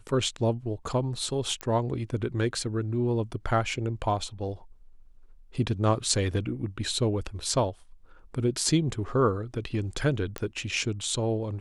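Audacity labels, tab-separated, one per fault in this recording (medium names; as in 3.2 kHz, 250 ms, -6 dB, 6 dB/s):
1.610000	1.610000	pop -17 dBFS
10.380000	10.380000	pop -16 dBFS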